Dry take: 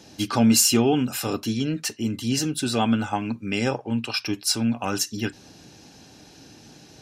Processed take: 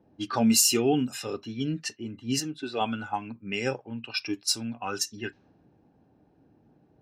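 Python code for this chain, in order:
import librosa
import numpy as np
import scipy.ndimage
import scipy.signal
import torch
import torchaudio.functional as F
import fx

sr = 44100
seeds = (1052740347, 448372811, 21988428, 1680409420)

y = fx.noise_reduce_blind(x, sr, reduce_db=9)
y = fx.bass_treble(y, sr, bass_db=-9, treble_db=-9, at=(2.4, 2.81))
y = fx.env_lowpass(y, sr, base_hz=840.0, full_db=-21.0)
y = y * 10.0 ** (-2.5 / 20.0)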